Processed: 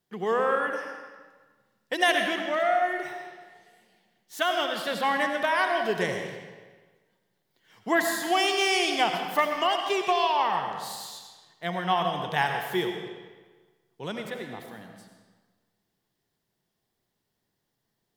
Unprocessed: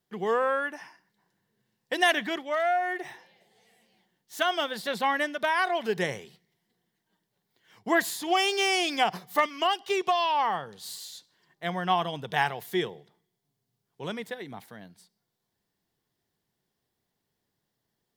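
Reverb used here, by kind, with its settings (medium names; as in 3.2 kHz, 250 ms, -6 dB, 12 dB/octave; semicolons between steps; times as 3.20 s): algorithmic reverb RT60 1.4 s, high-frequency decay 0.85×, pre-delay 45 ms, DRR 4 dB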